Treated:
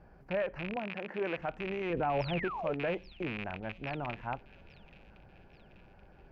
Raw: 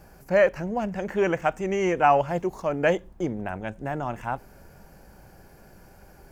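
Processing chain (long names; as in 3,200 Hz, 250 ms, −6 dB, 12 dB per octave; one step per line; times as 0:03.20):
loose part that buzzes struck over −34 dBFS, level −14 dBFS
0:00.76–0:01.38: high-pass filter 200 Hz 12 dB per octave
0:01.90–0:02.48: low-shelf EQ 470 Hz +9.5 dB
brickwall limiter −16.5 dBFS, peak gain reduction 10.5 dB
0:02.20–0:02.73: sound drawn into the spectrogram fall 400–5,800 Hz −31 dBFS
high-frequency loss of the air 350 metres
delay with a high-pass on its return 831 ms, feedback 55%, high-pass 4,600 Hz, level −7.5 dB
level −6 dB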